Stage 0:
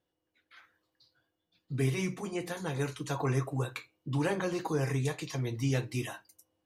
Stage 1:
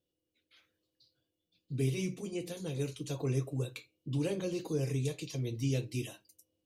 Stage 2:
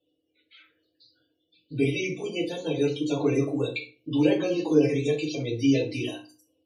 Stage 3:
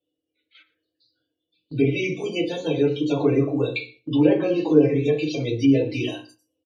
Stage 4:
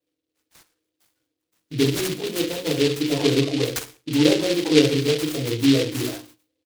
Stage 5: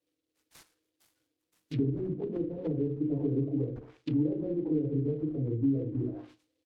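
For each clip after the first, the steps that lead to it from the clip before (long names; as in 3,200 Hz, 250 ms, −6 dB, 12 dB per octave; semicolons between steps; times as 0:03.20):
flat-topped bell 1,200 Hz −14 dB; level −2 dB
spectral peaks only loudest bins 64; three-way crossover with the lows and the highs turned down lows −14 dB, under 340 Hz, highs −14 dB, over 5,100 Hz; feedback delay network reverb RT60 0.34 s, low-frequency decay 1.4×, high-frequency decay 0.8×, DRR −3.5 dB; level +9 dB
treble cut that deepens with the level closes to 1,800 Hz, closed at −19.5 dBFS; noise gate −52 dBFS, range −11 dB; single-tap delay 117 ms −21 dB; level +4.5 dB
short delay modulated by noise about 3,200 Hz, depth 0.14 ms
downward compressor 10 to 1, threshold −18 dBFS, peak gain reduction 9.5 dB; treble cut that deepens with the level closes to 300 Hz, closed at −23.5 dBFS; level −2.5 dB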